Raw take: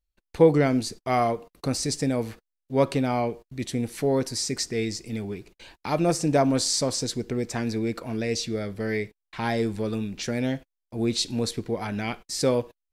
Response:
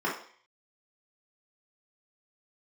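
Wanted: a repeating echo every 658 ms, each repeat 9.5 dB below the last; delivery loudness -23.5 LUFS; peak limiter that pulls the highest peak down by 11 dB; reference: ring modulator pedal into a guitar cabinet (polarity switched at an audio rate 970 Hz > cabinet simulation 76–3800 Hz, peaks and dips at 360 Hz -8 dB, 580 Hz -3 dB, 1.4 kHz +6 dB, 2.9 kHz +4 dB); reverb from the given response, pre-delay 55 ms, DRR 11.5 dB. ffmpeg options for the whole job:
-filter_complex "[0:a]alimiter=limit=0.15:level=0:latency=1,aecho=1:1:658|1316|1974|2632:0.335|0.111|0.0365|0.012,asplit=2[s0][s1];[1:a]atrim=start_sample=2205,adelay=55[s2];[s1][s2]afir=irnorm=-1:irlink=0,volume=0.075[s3];[s0][s3]amix=inputs=2:normalize=0,aeval=exprs='val(0)*sgn(sin(2*PI*970*n/s))':c=same,highpass=76,equalizer=f=360:t=q:w=4:g=-8,equalizer=f=580:t=q:w=4:g=-3,equalizer=f=1400:t=q:w=4:g=6,equalizer=f=2900:t=q:w=4:g=4,lowpass=f=3800:w=0.5412,lowpass=f=3800:w=1.3066,volume=1.19"

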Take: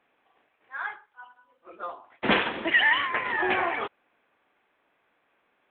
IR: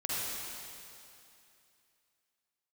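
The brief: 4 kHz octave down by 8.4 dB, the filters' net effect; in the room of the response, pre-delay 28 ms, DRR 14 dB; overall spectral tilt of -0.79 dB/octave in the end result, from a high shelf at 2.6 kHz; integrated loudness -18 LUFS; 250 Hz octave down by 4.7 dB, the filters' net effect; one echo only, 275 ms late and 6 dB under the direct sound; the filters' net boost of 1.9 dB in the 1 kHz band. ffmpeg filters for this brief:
-filter_complex "[0:a]equalizer=f=250:t=o:g=-7,equalizer=f=1000:t=o:g=4,highshelf=f=2600:g=-6,equalizer=f=4000:t=o:g=-8.5,aecho=1:1:275:0.501,asplit=2[s0][s1];[1:a]atrim=start_sample=2205,adelay=28[s2];[s1][s2]afir=irnorm=-1:irlink=0,volume=0.0944[s3];[s0][s3]amix=inputs=2:normalize=0,volume=2.66"

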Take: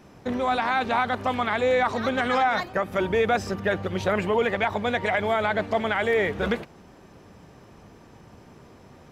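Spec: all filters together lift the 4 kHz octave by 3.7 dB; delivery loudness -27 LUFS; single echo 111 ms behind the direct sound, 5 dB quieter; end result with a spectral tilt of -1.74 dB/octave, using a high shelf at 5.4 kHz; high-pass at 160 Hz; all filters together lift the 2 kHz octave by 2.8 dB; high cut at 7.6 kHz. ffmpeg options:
-af "highpass=160,lowpass=7600,equalizer=f=2000:t=o:g=3,equalizer=f=4000:t=o:g=5,highshelf=f=5400:g=-4,aecho=1:1:111:0.562,volume=0.596"

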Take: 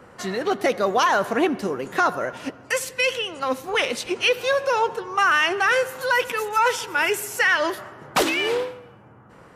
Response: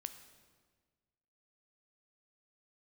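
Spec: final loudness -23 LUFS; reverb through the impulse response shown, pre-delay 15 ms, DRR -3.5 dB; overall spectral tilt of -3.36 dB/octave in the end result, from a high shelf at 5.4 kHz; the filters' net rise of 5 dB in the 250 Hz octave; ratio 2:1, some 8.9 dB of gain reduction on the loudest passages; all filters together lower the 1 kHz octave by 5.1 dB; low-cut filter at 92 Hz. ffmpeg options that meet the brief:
-filter_complex "[0:a]highpass=92,equalizer=f=250:t=o:g=7.5,equalizer=f=1000:t=o:g=-7.5,highshelf=f=5400:g=8.5,acompressor=threshold=0.0282:ratio=2,asplit=2[s0][s1];[1:a]atrim=start_sample=2205,adelay=15[s2];[s1][s2]afir=irnorm=-1:irlink=0,volume=2.24[s3];[s0][s3]amix=inputs=2:normalize=0,volume=1.12"

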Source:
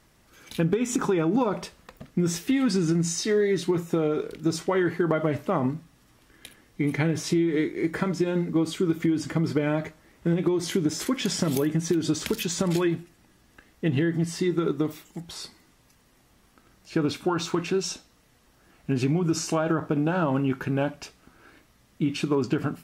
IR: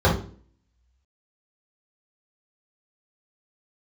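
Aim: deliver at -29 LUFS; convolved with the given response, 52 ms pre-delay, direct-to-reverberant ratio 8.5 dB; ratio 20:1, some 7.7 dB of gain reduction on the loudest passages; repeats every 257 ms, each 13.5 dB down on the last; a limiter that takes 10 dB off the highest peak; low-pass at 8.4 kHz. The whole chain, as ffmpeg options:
-filter_complex "[0:a]lowpass=8400,acompressor=threshold=0.0447:ratio=20,alimiter=limit=0.0631:level=0:latency=1,aecho=1:1:257|514:0.211|0.0444,asplit=2[s0][s1];[1:a]atrim=start_sample=2205,adelay=52[s2];[s1][s2]afir=irnorm=-1:irlink=0,volume=0.0376[s3];[s0][s3]amix=inputs=2:normalize=0,volume=1.19"

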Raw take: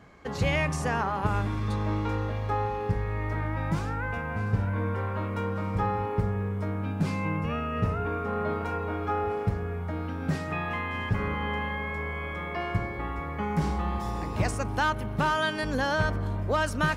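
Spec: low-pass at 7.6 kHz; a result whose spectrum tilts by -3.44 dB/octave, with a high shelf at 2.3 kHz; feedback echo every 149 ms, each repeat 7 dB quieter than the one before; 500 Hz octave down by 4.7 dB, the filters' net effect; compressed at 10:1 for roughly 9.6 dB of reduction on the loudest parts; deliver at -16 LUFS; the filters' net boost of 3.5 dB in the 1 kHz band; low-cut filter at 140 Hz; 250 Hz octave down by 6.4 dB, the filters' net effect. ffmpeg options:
-af "highpass=140,lowpass=7600,equalizer=f=250:t=o:g=-7,equalizer=f=500:t=o:g=-6,equalizer=f=1000:t=o:g=5.5,highshelf=f=2300:g=4,acompressor=threshold=0.0398:ratio=10,aecho=1:1:149|298|447|596|745:0.447|0.201|0.0905|0.0407|0.0183,volume=6.31"

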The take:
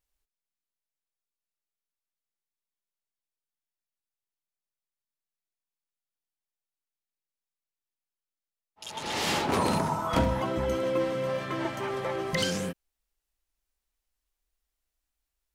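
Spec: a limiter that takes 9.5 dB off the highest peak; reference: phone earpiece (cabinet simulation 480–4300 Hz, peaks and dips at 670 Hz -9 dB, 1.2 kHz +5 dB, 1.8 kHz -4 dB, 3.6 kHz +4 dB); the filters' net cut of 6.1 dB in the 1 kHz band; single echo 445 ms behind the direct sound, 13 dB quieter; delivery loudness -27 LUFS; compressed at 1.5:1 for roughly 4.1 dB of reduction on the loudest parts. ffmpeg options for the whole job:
-af "equalizer=f=1000:t=o:g=-7.5,acompressor=threshold=0.0224:ratio=1.5,alimiter=level_in=1.41:limit=0.0631:level=0:latency=1,volume=0.708,highpass=480,equalizer=f=670:t=q:w=4:g=-9,equalizer=f=1200:t=q:w=4:g=5,equalizer=f=1800:t=q:w=4:g=-4,equalizer=f=3600:t=q:w=4:g=4,lowpass=f=4300:w=0.5412,lowpass=f=4300:w=1.3066,aecho=1:1:445:0.224,volume=4.22"

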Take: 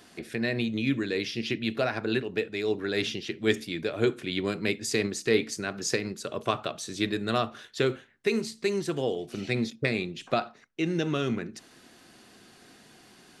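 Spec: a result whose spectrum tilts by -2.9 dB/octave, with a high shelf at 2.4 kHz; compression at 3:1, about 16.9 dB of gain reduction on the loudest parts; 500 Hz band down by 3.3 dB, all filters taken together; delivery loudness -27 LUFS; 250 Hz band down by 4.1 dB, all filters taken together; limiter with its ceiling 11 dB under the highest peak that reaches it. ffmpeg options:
-af "equalizer=f=250:t=o:g=-4.5,equalizer=f=500:t=o:g=-3,highshelf=f=2400:g=8.5,acompressor=threshold=0.00708:ratio=3,volume=8.41,alimiter=limit=0.178:level=0:latency=1"

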